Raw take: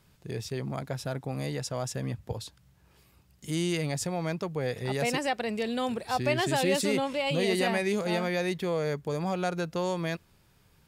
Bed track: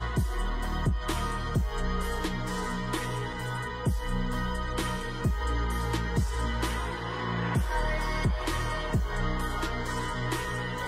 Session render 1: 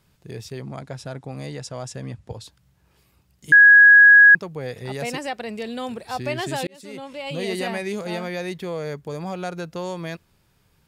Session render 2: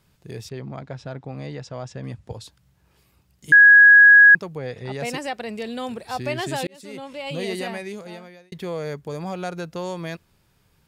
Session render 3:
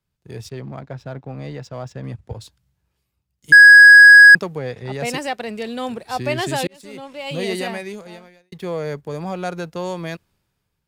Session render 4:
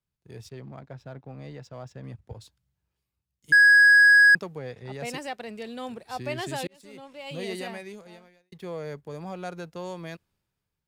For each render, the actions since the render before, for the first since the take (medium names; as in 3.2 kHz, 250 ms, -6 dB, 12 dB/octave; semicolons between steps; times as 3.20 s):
0.62–2.44 s: low-pass 10 kHz 24 dB/octave; 3.52–4.35 s: bleep 1.66 kHz -6.5 dBFS; 6.67–7.47 s: fade in
0.49–2.04 s: distance through air 130 m; 4.58–5.03 s: distance through air 76 m; 7.34–8.52 s: fade out
waveshaping leveller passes 1; three bands expanded up and down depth 40%
trim -9.5 dB